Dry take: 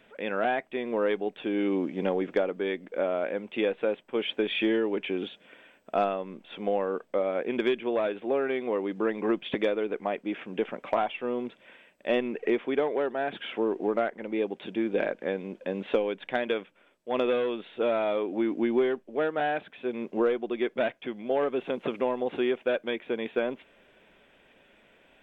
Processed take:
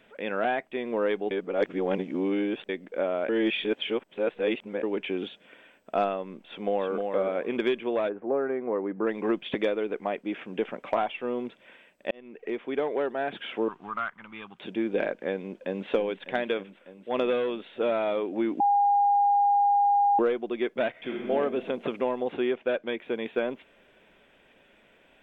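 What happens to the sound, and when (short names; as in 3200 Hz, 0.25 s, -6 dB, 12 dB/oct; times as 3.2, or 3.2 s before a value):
1.31–2.69 reverse
3.29–4.83 reverse
6.47–7.05 echo throw 0.31 s, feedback 20%, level -4.5 dB
8.08–9.05 LPF 1400 Hz -> 1900 Hz 24 dB/oct
12.11–12.96 fade in
13.68–14.59 EQ curve 150 Hz 0 dB, 350 Hz -21 dB, 530 Hz -22 dB, 790 Hz -8 dB, 1200 Hz +10 dB, 1900 Hz -4 dB, 3100 Hz +1 dB, 4900 Hz -6 dB
15.47–15.88 echo throw 0.3 s, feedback 85%, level -12.5 dB
18.6–20.19 bleep 811 Hz -18.5 dBFS
20.9–21.3 reverb throw, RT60 1.5 s, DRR -2 dB
22.33–22.99 air absorption 91 m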